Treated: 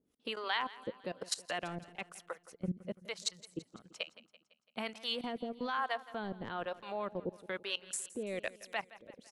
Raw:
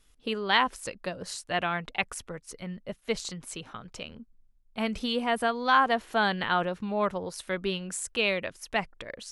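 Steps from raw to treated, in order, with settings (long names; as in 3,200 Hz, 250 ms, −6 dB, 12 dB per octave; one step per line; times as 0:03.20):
Chebyshev high-pass filter 220 Hz, order 2
transient designer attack +1 dB, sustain −12 dB
output level in coarse steps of 19 dB
two-band tremolo in antiphase 1.1 Hz, depth 100%, crossover 540 Hz
on a send: repeating echo 168 ms, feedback 55%, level −18 dB
on the sum: level +7 dB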